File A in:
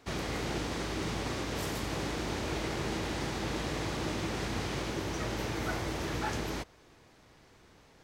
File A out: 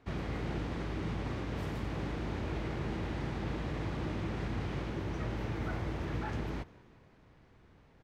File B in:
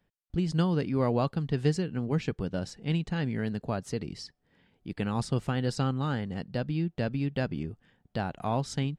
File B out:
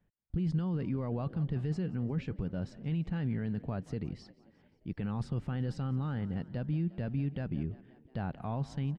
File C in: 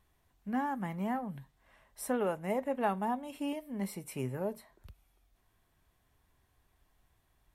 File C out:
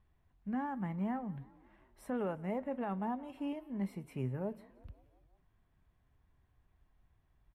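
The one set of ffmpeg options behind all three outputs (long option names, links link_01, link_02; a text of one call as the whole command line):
ffmpeg -i in.wav -filter_complex "[0:a]asplit=6[link_01][link_02][link_03][link_04][link_05][link_06];[link_02]adelay=176,afreqshift=33,volume=-23dB[link_07];[link_03]adelay=352,afreqshift=66,volume=-27.2dB[link_08];[link_04]adelay=528,afreqshift=99,volume=-31.3dB[link_09];[link_05]adelay=704,afreqshift=132,volume=-35.5dB[link_10];[link_06]adelay=880,afreqshift=165,volume=-39.6dB[link_11];[link_01][link_07][link_08][link_09][link_10][link_11]amix=inputs=6:normalize=0,alimiter=level_in=0.5dB:limit=-24dB:level=0:latency=1:release=13,volume=-0.5dB,bass=frequency=250:gain=7,treble=frequency=4000:gain=-14,volume=-5dB" out.wav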